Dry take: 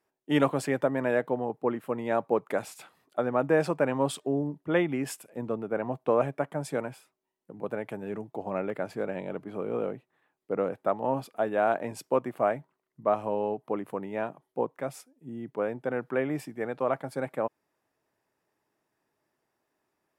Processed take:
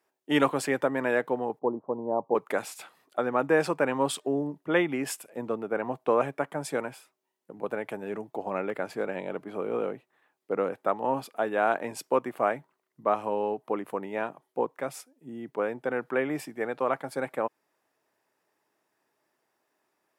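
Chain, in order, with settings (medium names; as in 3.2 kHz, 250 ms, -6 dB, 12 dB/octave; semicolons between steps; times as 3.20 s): 1.59–2.35 s: Chebyshev low-pass 1 kHz, order 5; dynamic bell 630 Hz, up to -5 dB, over -37 dBFS, Q 3.2; high-pass 360 Hz 6 dB/octave; trim +4 dB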